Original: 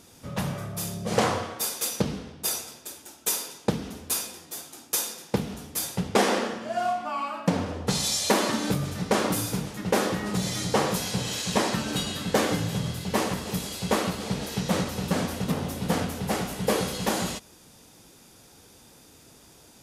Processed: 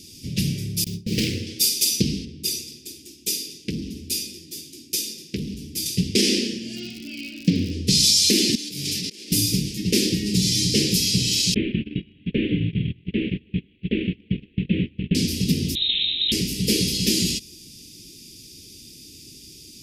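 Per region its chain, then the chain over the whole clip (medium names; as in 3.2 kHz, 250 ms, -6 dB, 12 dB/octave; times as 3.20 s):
0.84–1.47 s: self-modulated delay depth 0.57 ms + gate with hold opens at -22 dBFS, closes at -29 dBFS + treble shelf 3.2 kHz -9.5 dB
2.25–5.86 s: treble shelf 2.1 kHz -8.5 dB + transformer saturation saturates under 1.5 kHz
6.75–7.70 s: low-pass 4 kHz + crackle 110 per s -34 dBFS
8.55–9.32 s: high-pass 690 Hz 6 dB/octave + compressor with a negative ratio -40 dBFS
11.54–15.15 s: CVSD coder 16 kbps + gate -31 dBFS, range -22 dB
15.75–16.32 s: compression 10:1, threshold -26 dBFS + frequency inversion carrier 3.9 kHz
whole clip: elliptic band-stop 360–2500 Hz, stop band 60 dB; peaking EQ 5 kHz +10 dB 0.41 oct; loudness maximiser +13 dB; trim -5.5 dB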